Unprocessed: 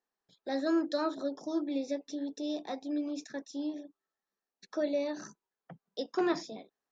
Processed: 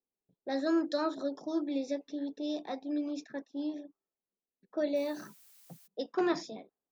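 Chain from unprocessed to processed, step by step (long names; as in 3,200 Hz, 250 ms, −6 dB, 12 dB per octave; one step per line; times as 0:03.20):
low-pass that shuts in the quiet parts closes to 440 Hz, open at −30.5 dBFS
0:04.95–0:05.86: background noise blue −60 dBFS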